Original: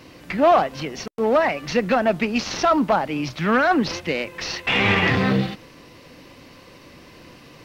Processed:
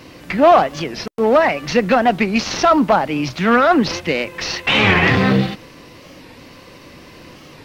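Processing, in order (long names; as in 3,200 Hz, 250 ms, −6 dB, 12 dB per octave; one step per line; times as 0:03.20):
wow of a warped record 45 rpm, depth 160 cents
level +5 dB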